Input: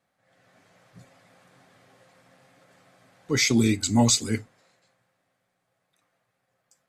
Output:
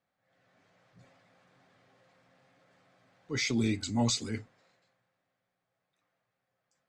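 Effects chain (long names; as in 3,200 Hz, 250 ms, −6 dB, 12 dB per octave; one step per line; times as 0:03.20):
low-pass filter 5,700 Hz 12 dB per octave
transient designer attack −4 dB, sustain +3 dB
level −7.5 dB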